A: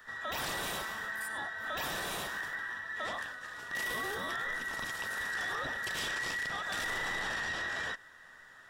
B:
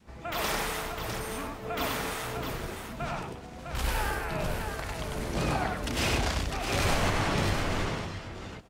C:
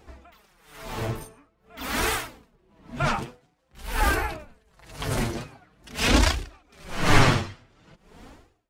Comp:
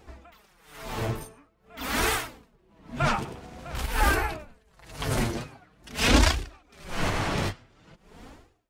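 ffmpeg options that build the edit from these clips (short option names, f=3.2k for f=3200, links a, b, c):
-filter_complex "[1:a]asplit=2[a][b];[2:a]asplit=3[c][d][e];[c]atrim=end=3.252[f];[a]atrim=start=3.248:end=3.862[g];[d]atrim=start=3.858:end=7.07[h];[b]atrim=start=7.01:end=7.53[i];[e]atrim=start=7.47[j];[f][g]acrossfade=d=0.004:c1=hsin:c2=hsin[k];[k][h]acrossfade=d=0.004:c1=hsin:c2=hsin[l];[l][i]acrossfade=d=0.06:c1=tri:c2=tri[m];[m][j]acrossfade=d=0.06:c1=tri:c2=tri"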